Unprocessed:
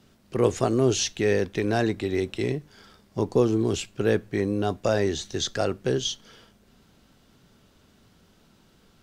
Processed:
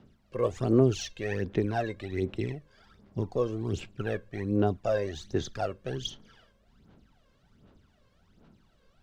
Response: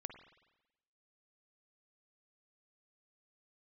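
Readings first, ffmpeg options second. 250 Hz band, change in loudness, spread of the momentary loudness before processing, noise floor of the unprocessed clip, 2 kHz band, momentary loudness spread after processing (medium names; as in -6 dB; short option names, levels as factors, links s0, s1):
-4.5 dB, -5.0 dB, 7 LU, -60 dBFS, -7.0 dB, 11 LU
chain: -af "lowpass=f=2600:p=1,aphaser=in_gain=1:out_gain=1:delay=1.9:decay=0.69:speed=1.3:type=sinusoidal,volume=0.398"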